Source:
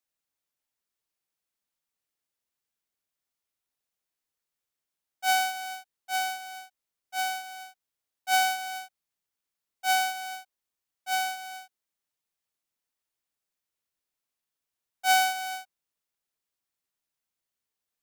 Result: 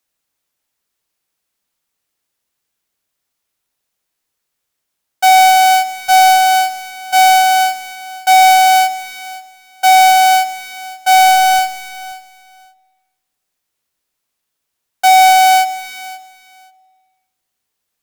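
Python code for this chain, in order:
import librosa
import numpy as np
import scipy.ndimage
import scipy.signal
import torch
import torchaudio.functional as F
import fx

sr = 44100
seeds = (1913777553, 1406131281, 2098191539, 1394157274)

p1 = fx.delta_hold(x, sr, step_db=-49.0, at=(11.14, 11.59))
p2 = fx.fold_sine(p1, sr, drive_db=9, ceiling_db=-13.5)
p3 = p1 + (p2 * 10.0 ** (-6.0 / 20.0))
p4 = fx.rev_spring(p3, sr, rt60_s=2.0, pass_ms=(49,), chirp_ms=65, drr_db=20.0)
p5 = fx.leveller(p4, sr, passes=3)
p6 = fx.echo_feedback(p5, sr, ms=531, feedback_pct=17, wet_db=-16.5)
y = p6 * 10.0 ** (8.0 / 20.0)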